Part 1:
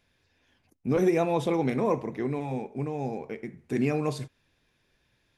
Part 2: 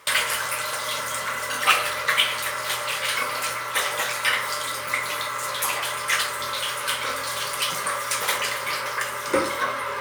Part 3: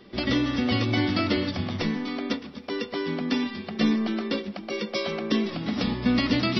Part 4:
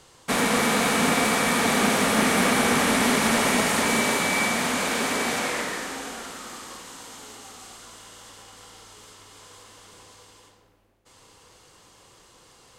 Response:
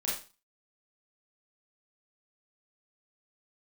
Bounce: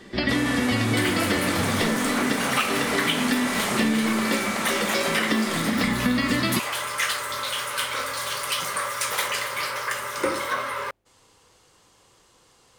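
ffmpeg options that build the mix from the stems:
-filter_complex "[0:a]volume=-3.5dB[a];[1:a]adelay=900,volume=-1dB[b];[2:a]equalizer=f=1.8k:t=o:w=0.27:g=10.5,volume=2dB,asplit=2[c][d];[d]volume=-12dB[e];[3:a]asoftclip=type=tanh:threshold=-13dB,volume=-4.5dB[f];[4:a]atrim=start_sample=2205[g];[e][g]afir=irnorm=-1:irlink=0[h];[a][b][c][f][h]amix=inputs=5:normalize=0,acompressor=threshold=-19dB:ratio=6"

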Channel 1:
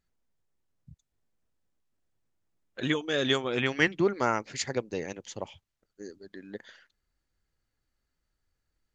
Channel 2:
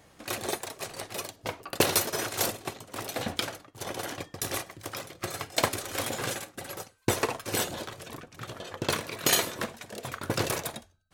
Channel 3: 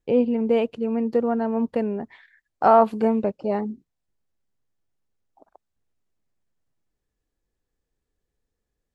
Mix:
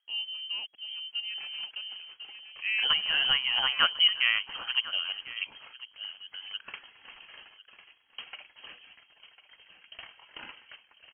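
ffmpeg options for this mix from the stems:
-filter_complex "[0:a]highshelf=f=2.3k:g=-8,volume=2dB,asplit=2[a][b];[b]volume=-17dB[c];[1:a]adelay=1100,volume=-16.5dB,asplit=2[d][e];[e]volume=-14dB[f];[2:a]aeval=exprs='sgn(val(0))*max(abs(val(0))-0.00447,0)':c=same,volume=-15.5dB,asplit=2[g][h];[h]volume=-9dB[i];[c][f][i]amix=inputs=3:normalize=0,aecho=0:1:1049:1[j];[a][d][g][j]amix=inputs=4:normalize=0,lowpass=f=2.8k:t=q:w=0.5098,lowpass=f=2.8k:t=q:w=0.6013,lowpass=f=2.8k:t=q:w=0.9,lowpass=f=2.8k:t=q:w=2.563,afreqshift=-3300"

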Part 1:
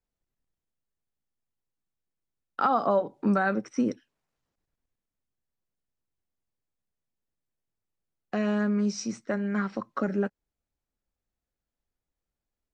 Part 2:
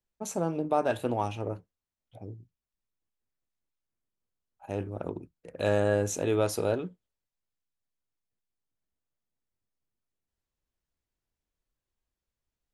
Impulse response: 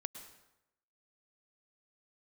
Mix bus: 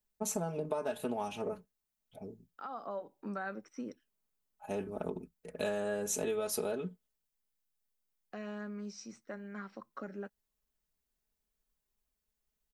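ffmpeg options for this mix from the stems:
-filter_complex "[0:a]lowshelf=f=190:g=-8.5,volume=-13dB[a];[1:a]aecho=1:1:4.7:0.85,acompressor=threshold=-28dB:ratio=12,highshelf=f=9.2k:g=11,volume=-3dB,asplit=2[b][c];[c]apad=whole_len=561511[d];[a][d]sidechaincompress=threshold=-50dB:ratio=8:attack=16:release=1150[e];[e][b]amix=inputs=2:normalize=0"

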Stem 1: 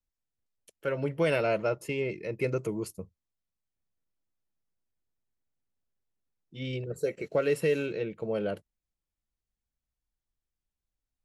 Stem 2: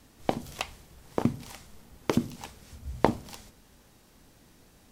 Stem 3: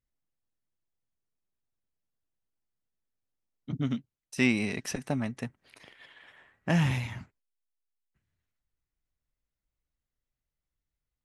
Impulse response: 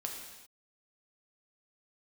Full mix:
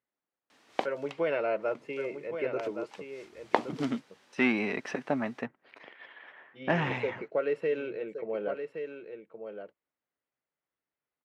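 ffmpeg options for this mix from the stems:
-filter_complex "[0:a]agate=range=-33dB:threshold=-46dB:ratio=3:detection=peak,volume=-1.5dB,asplit=3[a][b][c];[b]volume=-8dB[d];[1:a]crystalizer=i=10:c=0,adelay=500,volume=-5dB[e];[2:a]aeval=exprs='0.266*(cos(1*acos(clip(val(0)/0.266,-1,1)))-cos(1*PI/2))+0.0266*(cos(5*acos(clip(val(0)/0.266,-1,1)))-cos(5*PI/2))':c=same,volume=2.5dB[f];[c]apad=whole_len=238818[g];[e][g]sidechaincompress=threshold=-42dB:ratio=12:attack=26:release=337[h];[d]aecho=0:1:1119:1[i];[a][h][f][i]amix=inputs=4:normalize=0,highpass=330,lowpass=2.1k"

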